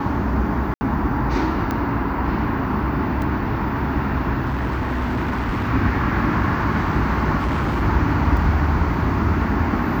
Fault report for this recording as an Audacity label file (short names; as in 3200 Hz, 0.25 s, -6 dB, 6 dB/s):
0.740000	0.810000	gap 70 ms
1.710000	1.710000	pop -11 dBFS
3.220000	3.220000	gap 2.4 ms
4.450000	5.690000	clipped -18.5 dBFS
7.390000	7.830000	clipped -17.5 dBFS
8.370000	8.370000	gap 2.8 ms